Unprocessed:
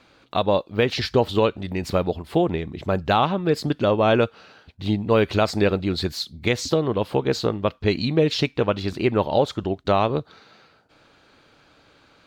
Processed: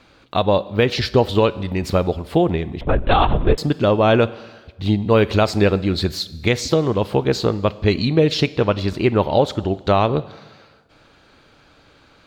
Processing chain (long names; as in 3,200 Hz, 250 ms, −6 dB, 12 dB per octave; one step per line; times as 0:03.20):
four-comb reverb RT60 1.3 s, combs from 31 ms, DRR 17.5 dB
0:02.81–0:03.58: linear-prediction vocoder at 8 kHz whisper
low-shelf EQ 83 Hz +8 dB
level +3 dB